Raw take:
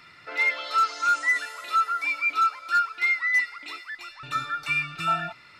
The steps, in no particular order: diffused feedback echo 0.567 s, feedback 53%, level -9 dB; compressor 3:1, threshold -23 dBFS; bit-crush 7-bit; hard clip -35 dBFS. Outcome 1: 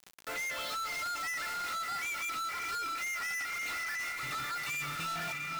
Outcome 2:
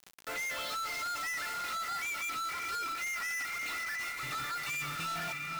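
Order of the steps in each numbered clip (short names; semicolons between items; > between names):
bit-crush > diffused feedback echo > compressor > hard clip; compressor > bit-crush > diffused feedback echo > hard clip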